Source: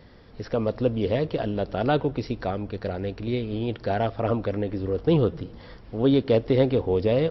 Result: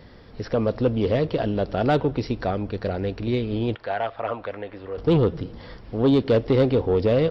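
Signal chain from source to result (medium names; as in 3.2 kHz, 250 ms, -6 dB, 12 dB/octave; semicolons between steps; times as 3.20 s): 3.75–4.98 s: three-band isolator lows -17 dB, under 590 Hz, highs -21 dB, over 3.7 kHz; saturation -14.5 dBFS, distortion -18 dB; trim +3.5 dB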